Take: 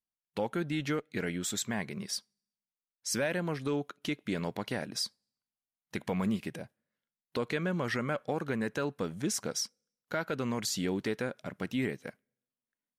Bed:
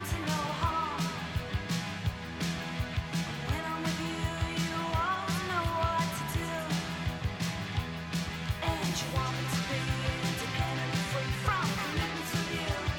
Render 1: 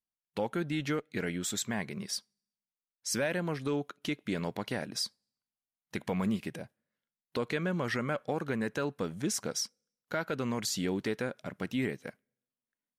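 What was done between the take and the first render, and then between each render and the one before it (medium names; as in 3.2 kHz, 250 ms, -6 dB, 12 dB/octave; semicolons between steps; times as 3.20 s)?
no audible change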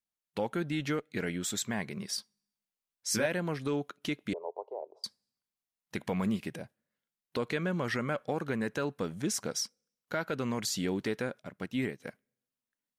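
2.16–3.26 s: doubling 19 ms -3 dB; 4.33–5.04 s: elliptic band-pass 400–930 Hz; 11.39–12.00 s: upward expansion, over -46 dBFS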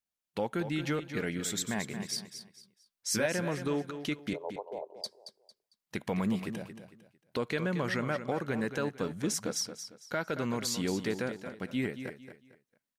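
feedback delay 226 ms, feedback 31%, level -10 dB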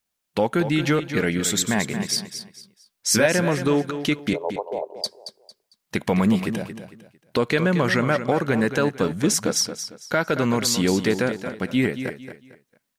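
trim +11.5 dB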